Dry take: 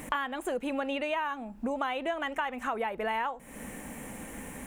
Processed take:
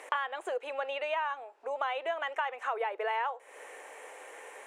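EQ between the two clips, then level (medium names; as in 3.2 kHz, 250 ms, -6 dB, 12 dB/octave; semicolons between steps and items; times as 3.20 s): elliptic high-pass 410 Hz, stop band 50 dB; distance through air 67 m; 0.0 dB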